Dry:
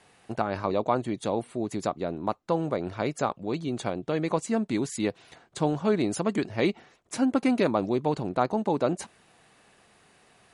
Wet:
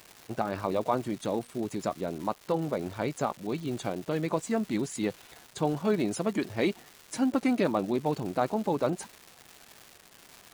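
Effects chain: coarse spectral quantiser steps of 15 dB; crackle 470 per s -36 dBFS; trim -2 dB

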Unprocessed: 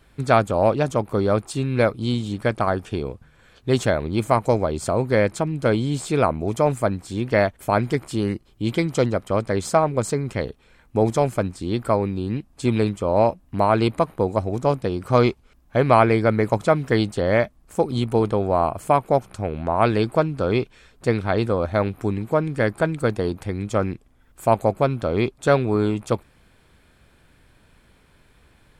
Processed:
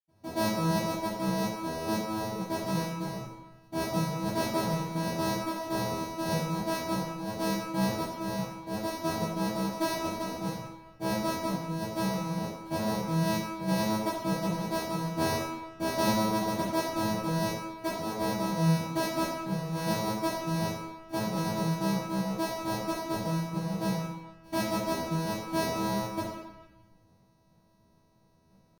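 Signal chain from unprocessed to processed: sorted samples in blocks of 256 samples; pitch shift +11 st; reverberation RT60 1.0 s, pre-delay 77 ms, DRR -60 dB; trim -3 dB

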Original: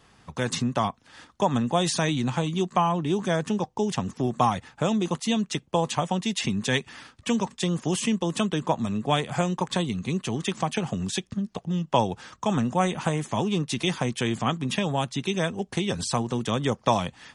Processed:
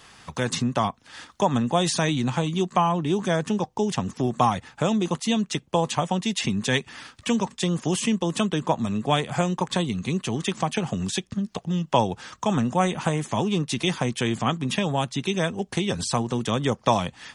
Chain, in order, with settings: tape noise reduction on one side only encoder only; trim +1.5 dB

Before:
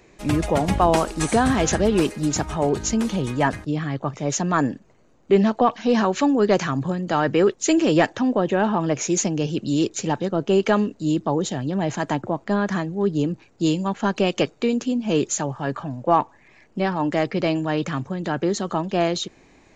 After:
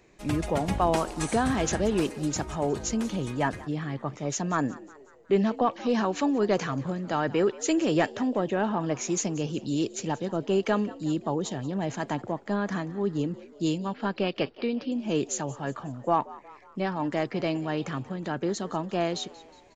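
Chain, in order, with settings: 13.78–14.92 s: elliptic low-pass 5 kHz, stop band 40 dB; frequency-shifting echo 182 ms, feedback 52%, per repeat +72 Hz, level -19.5 dB; trim -6.5 dB

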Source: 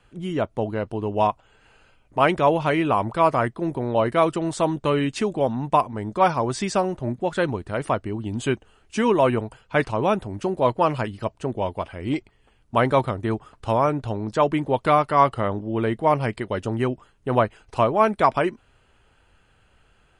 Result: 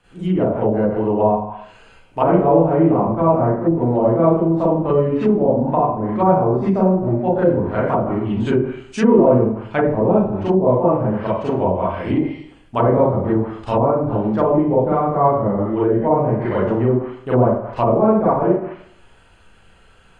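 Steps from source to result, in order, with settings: Schroeder reverb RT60 0.61 s, combs from 33 ms, DRR -9.5 dB; low-pass that closes with the level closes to 570 Hz, closed at -10.5 dBFS; trim -1 dB

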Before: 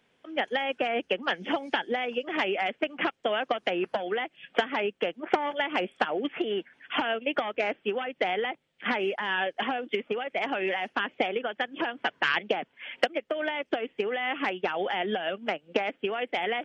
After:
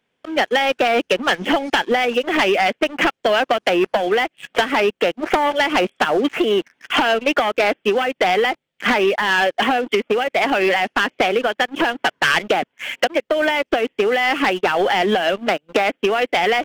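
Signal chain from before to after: waveshaping leveller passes 3; trim +2 dB

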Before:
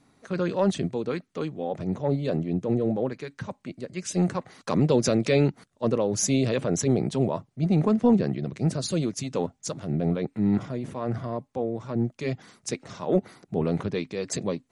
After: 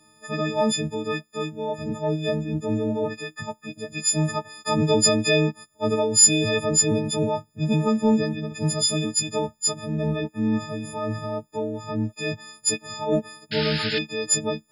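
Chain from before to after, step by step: partials quantised in pitch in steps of 6 st; painted sound noise, 13.51–13.99 s, 1.4–5.3 kHz -29 dBFS

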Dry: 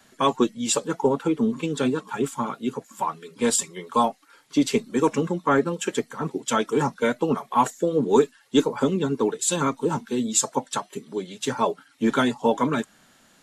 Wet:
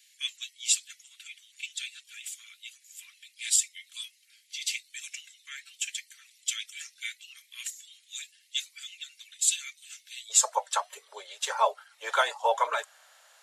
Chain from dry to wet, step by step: steep high-pass 2.1 kHz 48 dB/octave, from 10.29 s 550 Hz

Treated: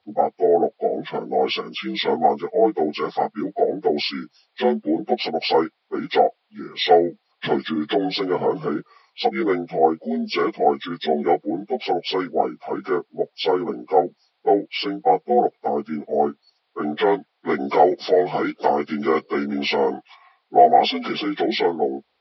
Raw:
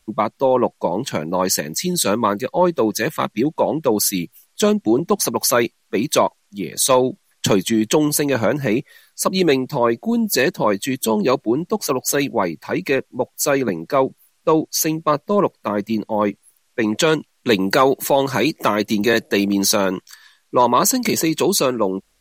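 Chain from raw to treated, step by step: frequency axis rescaled in octaves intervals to 76%; cabinet simulation 150–4500 Hz, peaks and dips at 180 Hz -5 dB, 270 Hz -3 dB, 470 Hz +5 dB, 740 Hz +9 dB, 1.6 kHz -4 dB, 2.8 kHz -3 dB; trim -3.5 dB

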